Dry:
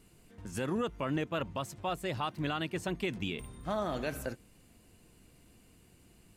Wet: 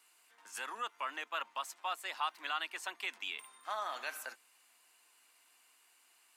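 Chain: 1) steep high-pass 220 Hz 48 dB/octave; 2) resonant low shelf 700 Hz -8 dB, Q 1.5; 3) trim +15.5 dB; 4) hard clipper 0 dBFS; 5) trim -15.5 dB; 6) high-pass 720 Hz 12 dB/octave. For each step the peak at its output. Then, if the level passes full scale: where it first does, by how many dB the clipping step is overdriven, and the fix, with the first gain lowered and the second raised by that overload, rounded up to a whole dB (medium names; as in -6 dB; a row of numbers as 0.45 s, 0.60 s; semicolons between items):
-20.5 dBFS, -21.5 dBFS, -6.0 dBFS, -6.0 dBFS, -21.5 dBFS, -22.0 dBFS; nothing clips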